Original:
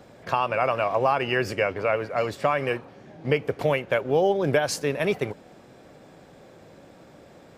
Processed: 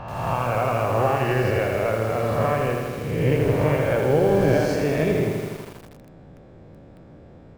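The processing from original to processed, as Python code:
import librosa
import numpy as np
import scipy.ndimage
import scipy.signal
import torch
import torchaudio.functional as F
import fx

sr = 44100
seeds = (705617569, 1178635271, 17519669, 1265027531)

y = fx.spec_swells(x, sr, rise_s=1.31)
y = fx.riaa(y, sr, side='playback')
y = fx.echo_crushed(y, sr, ms=81, feedback_pct=80, bits=6, wet_db=-4.5)
y = F.gain(torch.from_numpy(y), -5.5).numpy()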